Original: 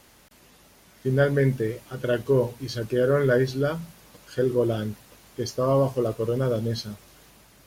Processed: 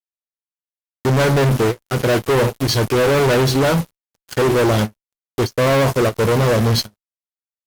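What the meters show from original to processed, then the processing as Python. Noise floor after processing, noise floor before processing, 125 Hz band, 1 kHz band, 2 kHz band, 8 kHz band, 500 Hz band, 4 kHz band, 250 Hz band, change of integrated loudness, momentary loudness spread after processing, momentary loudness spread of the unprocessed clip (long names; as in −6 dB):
below −85 dBFS, −55 dBFS, +8.5 dB, +13.0 dB, +10.5 dB, +15.0 dB, +6.5 dB, +14.5 dB, +8.0 dB, +8.0 dB, 9 LU, 14 LU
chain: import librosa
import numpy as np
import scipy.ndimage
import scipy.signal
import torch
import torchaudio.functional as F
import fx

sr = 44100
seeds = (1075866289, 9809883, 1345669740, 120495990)

y = fx.fuzz(x, sr, gain_db=35.0, gate_db=-40.0)
y = fx.end_taper(y, sr, db_per_s=490.0)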